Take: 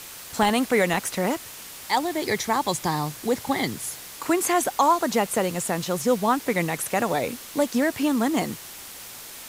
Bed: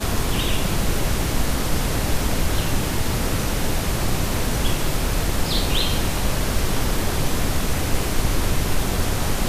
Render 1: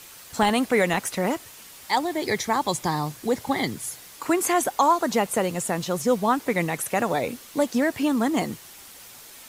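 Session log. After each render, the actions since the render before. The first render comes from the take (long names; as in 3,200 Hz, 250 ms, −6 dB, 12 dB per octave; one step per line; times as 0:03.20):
broadband denoise 6 dB, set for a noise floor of −41 dBFS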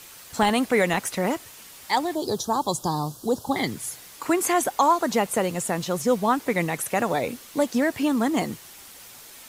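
0:02.15–0:03.56: Butterworth band-reject 2,100 Hz, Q 0.93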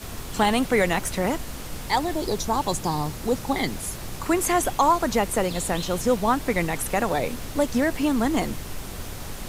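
mix in bed −13.5 dB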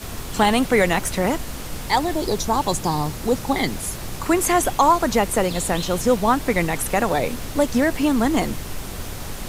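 level +3.5 dB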